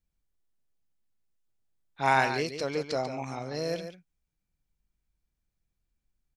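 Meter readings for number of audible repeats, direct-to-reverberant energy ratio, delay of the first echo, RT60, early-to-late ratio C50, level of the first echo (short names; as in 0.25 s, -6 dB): 1, none, 0.142 s, none, none, -9.5 dB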